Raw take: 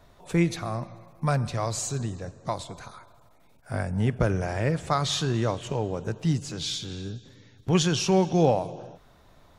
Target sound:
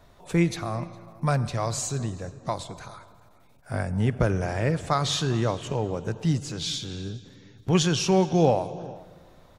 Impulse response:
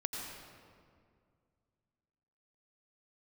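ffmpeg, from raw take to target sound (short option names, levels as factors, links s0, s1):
-filter_complex "[0:a]asplit=2[s0][s1];[s1]adelay=408.2,volume=0.0891,highshelf=f=4000:g=-9.18[s2];[s0][s2]amix=inputs=2:normalize=0,asplit=2[s3][s4];[1:a]atrim=start_sample=2205,asetrate=48510,aresample=44100[s5];[s4][s5]afir=irnorm=-1:irlink=0,volume=0.112[s6];[s3][s6]amix=inputs=2:normalize=0"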